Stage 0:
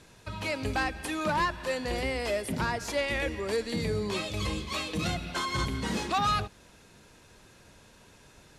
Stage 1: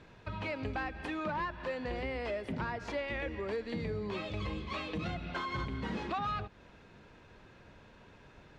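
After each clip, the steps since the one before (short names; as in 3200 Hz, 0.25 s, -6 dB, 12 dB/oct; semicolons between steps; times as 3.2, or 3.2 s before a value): LPF 2700 Hz 12 dB/oct; compressor 2.5:1, threshold -36 dBFS, peak gain reduction 8.5 dB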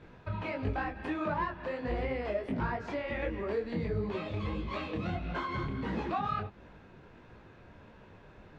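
high shelf 2800 Hz -10.5 dB; detuned doubles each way 52 cents; gain +7 dB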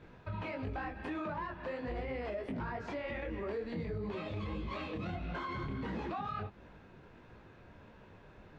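limiter -28.5 dBFS, peak gain reduction 7 dB; gain -2 dB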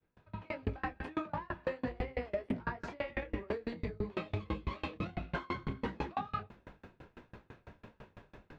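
opening faded in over 0.67 s; dB-ramp tremolo decaying 6 Hz, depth 32 dB; gain +9 dB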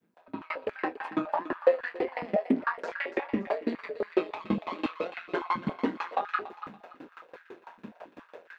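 thinning echo 0.285 s, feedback 41%, high-pass 750 Hz, level -12 dB; AM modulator 170 Hz, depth 50%; stepped high-pass 7.2 Hz 210–1600 Hz; gain +7 dB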